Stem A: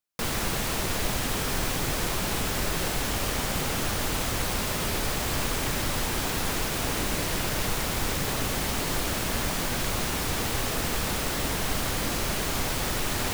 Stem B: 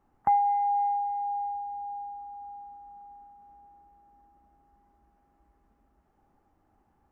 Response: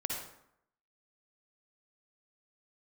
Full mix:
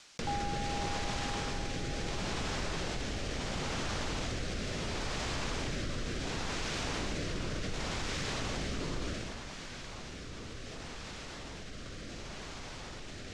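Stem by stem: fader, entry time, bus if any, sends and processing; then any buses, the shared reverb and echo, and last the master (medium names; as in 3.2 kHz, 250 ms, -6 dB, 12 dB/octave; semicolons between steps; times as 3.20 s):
9.08 s -9 dB -> 9.42 s -17.5 dB, 0.00 s, no send, low-pass 6.8 kHz 24 dB/octave; rotary cabinet horn 0.7 Hz; level flattener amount 70%
-14.5 dB, 0.00 s, no send, none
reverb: none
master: tape noise reduction on one side only encoder only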